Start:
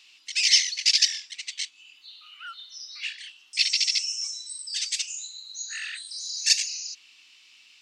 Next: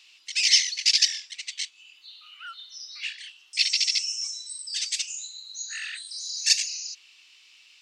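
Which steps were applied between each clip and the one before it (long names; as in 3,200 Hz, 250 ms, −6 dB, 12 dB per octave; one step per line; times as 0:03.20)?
Chebyshev high-pass filter 340 Hz, order 3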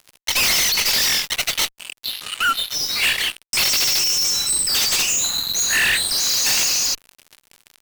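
fuzz pedal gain 42 dB, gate −47 dBFS
dynamic equaliser 5,300 Hz, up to −5 dB, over −27 dBFS, Q 0.85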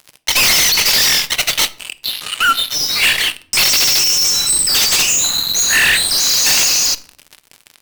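rectangular room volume 800 cubic metres, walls furnished, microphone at 0.44 metres
level +5.5 dB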